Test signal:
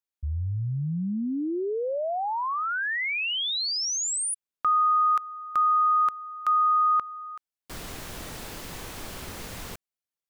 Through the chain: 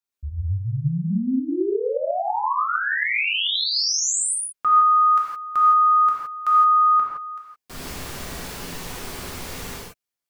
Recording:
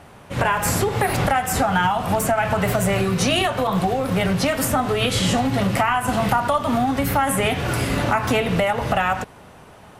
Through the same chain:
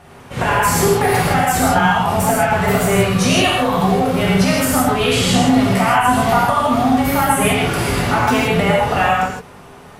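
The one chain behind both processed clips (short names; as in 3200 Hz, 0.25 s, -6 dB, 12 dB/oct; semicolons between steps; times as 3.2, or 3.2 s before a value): non-linear reverb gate 0.19 s flat, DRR -5 dB; gain -1 dB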